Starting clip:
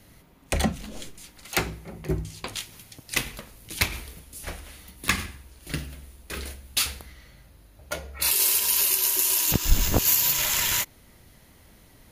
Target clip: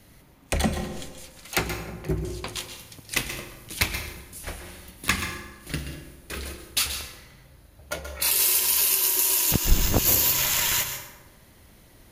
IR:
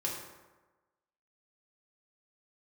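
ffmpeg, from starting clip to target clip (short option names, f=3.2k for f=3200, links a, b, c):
-filter_complex "[0:a]asplit=2[a][b];[1:a]atrim=start_sample=2205,adelay=128[c];[b][c]afir=irnorm=-1:irlink=0,volume=-10.5dB[d];[a][d]amix=inputs=2:normalize=0"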